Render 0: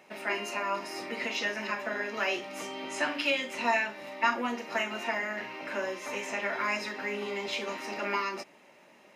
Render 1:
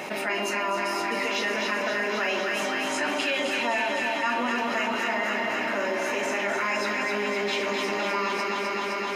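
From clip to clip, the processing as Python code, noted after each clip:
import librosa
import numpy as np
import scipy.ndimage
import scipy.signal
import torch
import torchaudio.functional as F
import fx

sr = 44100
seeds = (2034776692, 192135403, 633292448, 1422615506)

y = fx.echo_alternate(x, sr, ms=129, hz=1100.0, feedback_pct=88, wet_db=-4)
y = fx.env_flatten(y, sr, amount_pct=70)
y = y * librosa.db_to_amplitude(-2.5)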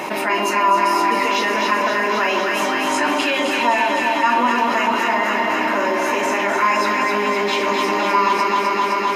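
y = fx.graphic_eq_31(x, sr, hz=(315, 1000, 12500), db=(7, 10, 6))
y = y * librosa.db_to_amplitude(6.0)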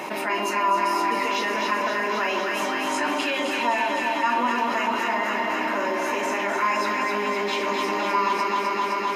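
y = scipy.signal.sosfilt(scipy.signal.butter(2, 100.0, 'highpass', fs=sr, output='sos'), x)
y = y * librosa.db_to_amplitude(-6.0)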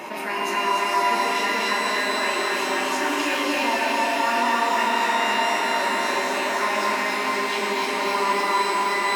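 y = x + 10.0 ** (-4.5 / 20.0) * np.pad(x, (int(294 * sr / 1000.0), 0))[:len(x)]
y = fx.rev_shimmer(y, sr, seeds[0], rt60_s=3.6, semitones=12, shimmer_db=-8, drr_db=0.0)
y = y * librosa.db_to_amplitude(-3.0)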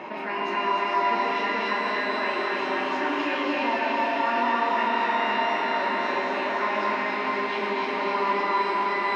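y = fx.air_absorb(x, sr, metres=270.0)
y = y * librosa.db_to_amplitude(-1.0)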